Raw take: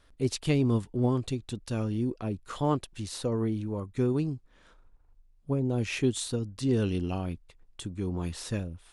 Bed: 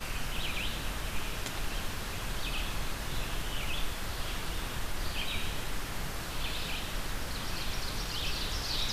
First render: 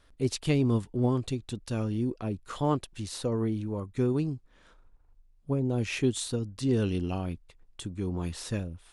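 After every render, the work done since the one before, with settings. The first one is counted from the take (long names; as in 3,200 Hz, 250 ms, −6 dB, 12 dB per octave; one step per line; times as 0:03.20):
no processing that can be heard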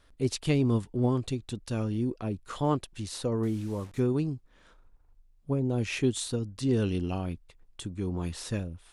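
0:03.43–0:04.00: linear delta modulator 64 kbit/s, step −46 dBFS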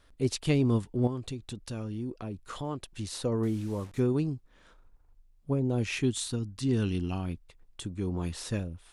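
0:01.07–0:02.94: downward compressor 2 to 1, threshold −36 dBFS
0:05.91–0:07.29: parametric band 530 Hz −8 dB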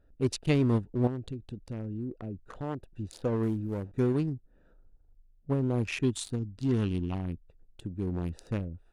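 adaptive Wiener filter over 41 samples
parametric band 1,200 Hz +3.5 dB 2 octaves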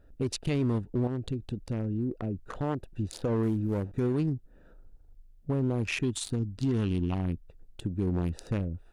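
in parallel at +0.5 dB: downward compressor, threshold −34 dBFS, peak gain reduction 13 dB
on the sum: brickwall limiter −20.5 dBFS, peak gain reduction 8.5 dB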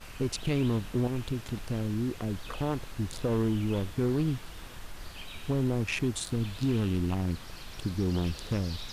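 mix in bed −9 dB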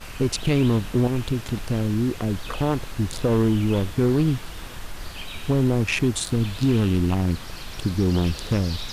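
level +8 dB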